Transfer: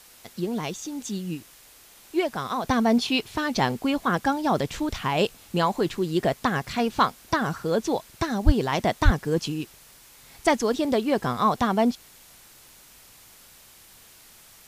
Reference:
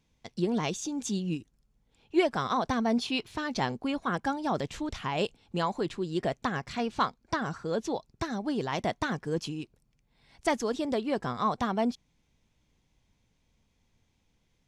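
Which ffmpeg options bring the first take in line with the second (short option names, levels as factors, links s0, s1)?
-filter_complex "[0:a]asplit=3[s0][s1][s2];[s0]afade=t=out:st=8.45:d=0.02[s3];[s1]highpass=f=140:w=0.5412,highpass=f=140:w=1.3066,afade=t=in:st=8.45:d=0.02,afade=t=out:st=8.57:d=0.02[s4];[s2]afade=t=in:st=8.57:d=0.02[s5];[s3][s4][s5]amix=inputs=3:normalize=0,asplit=3[s6][s7][s8];[s6]afade=t=out:st=9.04:d=0.02[s9];[s7]highpass=f=140:w=0.5412,highpass=f=140:w=1.3066,afade=t=in:st=9.04:d=0.02,afade=t=out:st=9.16:d=0.02[s10];[s8]afade=t=in:st=9.16:d=0.02[s11];[s9][s10][s11]amix=inputs=3:normalize=0,afwtdn=0.0032,asetnsamples=n=441:p=0,asendcmd='2.64 volume volume -6.5dB',volume=1"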